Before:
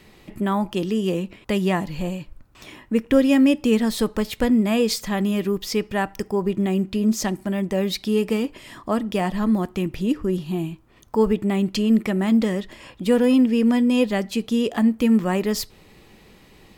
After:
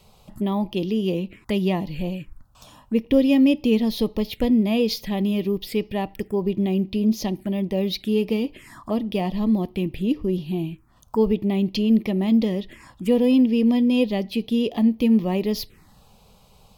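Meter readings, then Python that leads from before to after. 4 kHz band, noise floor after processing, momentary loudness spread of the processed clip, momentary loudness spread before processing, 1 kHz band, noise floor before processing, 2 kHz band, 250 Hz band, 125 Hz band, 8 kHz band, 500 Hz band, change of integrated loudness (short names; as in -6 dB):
-1.0 dB, -54 dBFS, 11 LU, 11 LU, -4.5 dB, -51 dBFS, -5.5 dB, -0.5 dB, 0.0 dB, n/a, -1.0 dB, -0.5 dB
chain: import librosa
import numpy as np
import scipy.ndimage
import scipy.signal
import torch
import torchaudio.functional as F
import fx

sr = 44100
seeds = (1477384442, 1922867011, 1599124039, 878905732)

y = fx.env_phaser(x, sr, low_hz=290.0, high_hz=1500.0, full_db=-22.0)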